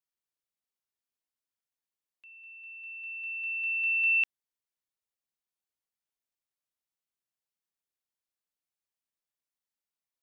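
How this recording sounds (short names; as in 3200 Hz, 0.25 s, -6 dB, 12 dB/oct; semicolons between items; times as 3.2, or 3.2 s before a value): noise floor -93 dBFS; spectral tilt +0.5 dB/oct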